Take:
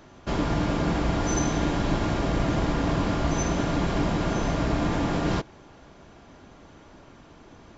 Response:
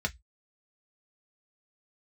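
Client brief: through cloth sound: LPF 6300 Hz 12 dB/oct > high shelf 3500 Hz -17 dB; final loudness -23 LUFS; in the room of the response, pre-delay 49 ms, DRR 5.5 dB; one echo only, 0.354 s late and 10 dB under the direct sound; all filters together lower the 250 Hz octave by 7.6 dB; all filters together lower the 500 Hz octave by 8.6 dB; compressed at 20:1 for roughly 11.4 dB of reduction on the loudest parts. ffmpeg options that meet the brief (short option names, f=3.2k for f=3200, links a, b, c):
-filter_complex "[0:a]equalizer=f=250:t=o:g=-8,equalizer=f=500:t=o:g=-9,acompressor=threshold=-34dB:ratio=20,aecho=1:1:354:0.316,asplit=2[a][b];[1:a]atrim=start_sample=2205,adelay=49[c];[b][c]afir=irnorm=-1:irlink=0,volume=-11.5dB[d];[a][d]amix=inputs=2:normalize=0,lowpass=6.3k,highshelf=f=3.5k:g=-17,volume=15.5dB"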